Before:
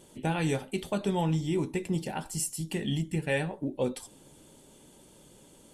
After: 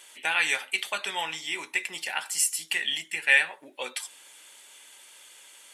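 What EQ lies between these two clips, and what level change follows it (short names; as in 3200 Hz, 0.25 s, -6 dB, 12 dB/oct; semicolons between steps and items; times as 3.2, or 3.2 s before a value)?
HPF 1300 Hz 12 dB/oct; bell 2100 Hz +9 dB 1.2 oct; +7.5 dB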